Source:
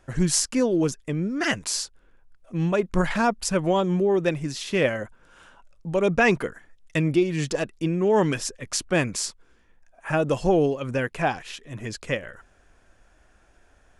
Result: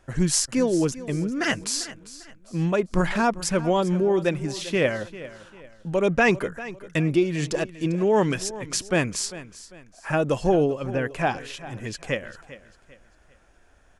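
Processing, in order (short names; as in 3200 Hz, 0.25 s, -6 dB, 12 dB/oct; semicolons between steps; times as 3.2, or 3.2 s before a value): 10.64–11.06 high shelf 3500 Hz -11.5 dB; feedback echo 0.397 s, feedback 35%, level -16 dB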